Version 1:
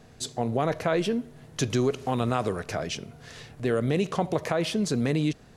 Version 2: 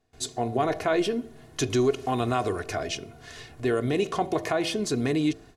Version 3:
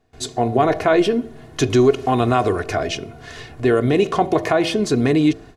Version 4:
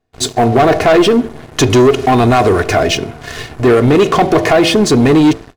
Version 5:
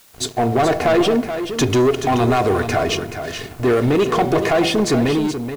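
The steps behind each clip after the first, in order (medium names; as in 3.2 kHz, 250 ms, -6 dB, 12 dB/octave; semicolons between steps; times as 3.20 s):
de-hum 55.83 Hz, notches 14; gate with hold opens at -42 dBFS; comb 2.8 ms, depth 57%
treble shelf 4.2 kHz -8 dB; trim +9 dB
waveshaping leveller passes 3
fade out at the end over 0.58 s; added noise white -43 dBFS; delay 428 ms -9 dB; trim -7 dB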